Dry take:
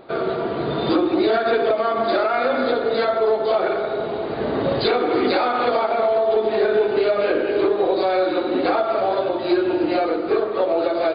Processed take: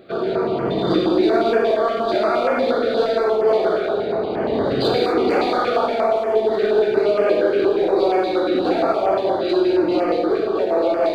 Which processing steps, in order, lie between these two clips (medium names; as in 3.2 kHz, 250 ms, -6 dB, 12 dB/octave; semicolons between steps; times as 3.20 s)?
high-pass 60 Hz; in parallel at -6 dB: overload inside the chain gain 19.5 dB; on the sum: gated-style reverb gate 280 ms flat, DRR -1 dB; step-sequenced notch 8.5 Hz 940–3800 Hz; trim -3.5 dB